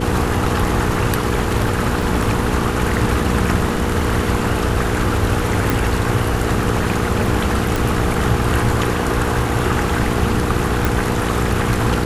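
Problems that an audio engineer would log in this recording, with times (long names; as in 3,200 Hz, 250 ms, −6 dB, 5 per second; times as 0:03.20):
surface crackle 12 per second −26 dBFS
mains hum 60 Hz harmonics 8 −22 dBFS
0:02.02: drop-out 3.7 ms
0:05.70: click
0:07.76: click
0:10.85: click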